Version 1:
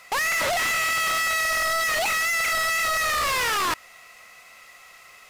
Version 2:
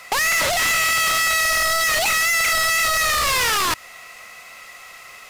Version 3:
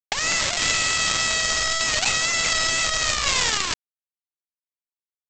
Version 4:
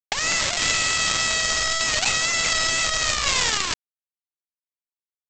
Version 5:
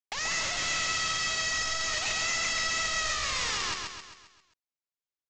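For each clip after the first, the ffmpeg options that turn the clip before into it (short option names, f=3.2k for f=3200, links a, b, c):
-filter_complex "[0:a]acrossover=split=160|3000[a][b][c];[b]acompressor=threshold=-28dB:ratio=6[d];[a][d][c]amix=inputs=3:normalize=0,volume=7.5dB"
-af "equalizer=f=350:t=o:w=3:g=-7.5,aresample=16000,acrusher=bits=2:mix=0:aa=0.5,aresample=44100,volume=4.5dB"
-af anull
-af "aresample=16000,asoftclip=type=tanh:threshold=-21dB,aresample=44100,aecho=1:1:133|266|399|532|665|798:0.631|0.315|0.158|0.0789|0.0394|0.0197,volume=-3.5dB"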